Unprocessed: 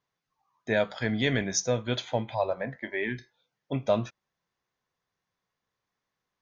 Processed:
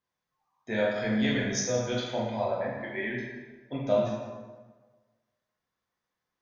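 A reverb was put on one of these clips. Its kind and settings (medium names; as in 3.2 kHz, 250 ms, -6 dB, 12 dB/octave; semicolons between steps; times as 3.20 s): plate-style reverb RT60 1.4 s, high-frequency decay 0.65×, DRR -5.5 dB; trim -7.5 dB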